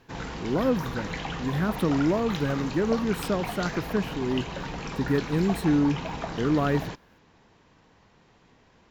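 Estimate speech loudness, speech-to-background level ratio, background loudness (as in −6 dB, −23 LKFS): −27.0 LKFS, 7.5 dB, −34.5 LKFS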